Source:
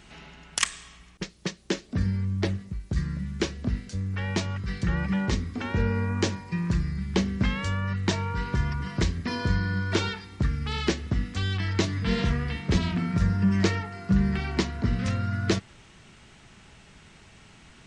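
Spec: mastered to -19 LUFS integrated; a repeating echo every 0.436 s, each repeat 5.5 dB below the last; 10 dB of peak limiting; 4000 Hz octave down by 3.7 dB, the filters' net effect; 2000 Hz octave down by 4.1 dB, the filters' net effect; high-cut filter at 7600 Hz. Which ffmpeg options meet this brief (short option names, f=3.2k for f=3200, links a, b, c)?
-af "lowpass=7.6k,equalizer=f=2k:t=o:g=-4.5,equalizer=f=4k:t=o:g=-3,alimiter=limit=-20.5dB:level=0:latency=1,aecho=1:1:436|872|1308|1744|2180|2616|3052:0.531|0.281|0.149|0.079|0.0419|0.0222|0.0118,volume=10.5dB"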